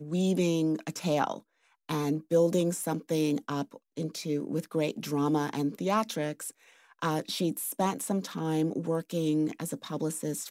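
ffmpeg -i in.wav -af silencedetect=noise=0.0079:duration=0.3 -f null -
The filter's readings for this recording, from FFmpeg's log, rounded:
silence_start: 1.38
silence_end: 1.89 | silence_duration: 0.50
silence_start: 6.50
silence_end: 7.02 | silence_duration: 0.52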